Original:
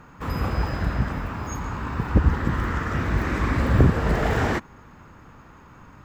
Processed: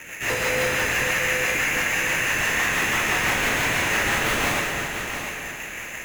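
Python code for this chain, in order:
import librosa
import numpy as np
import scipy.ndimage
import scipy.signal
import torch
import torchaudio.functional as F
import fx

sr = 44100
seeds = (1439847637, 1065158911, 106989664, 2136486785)

p1 = scipy.signal.sosfilt(scipy.signal.butter(16, 1700.0, 'highpass', fs=sr, output='sos'), x)
p2 = fx.sample_hold(p1, sr, seeds[0], rate_hz=4500.0, jitter_pct=0)
p3 = fx.fold_sine(p2, sr, drive_db=19, ceiling_db=-21.5)
p4 = p2 + (p3 * 10.0 ** (-3.5 / 20.0))
p5 = fx.rotary(p4, sr, hz=6.0)
p6 = 10.0 ** (-23.5 / 20.0) * np.tanh(p5 / 10.0 ** (-23.5 / 20.0))
p7 = p6 + fx.echo_feedback(p6, sr, ms=696, feedback_pct=27, wet_db=-8.5, dry=0)
p8 = fx.rev_plate(p7, sr, seeds[1], rt60_s=2.5, hf_ratio=0.8, predelay_ms=0, drr_db=-0.5)
y = p8 * 10.0 ** (5.5 / 20.0)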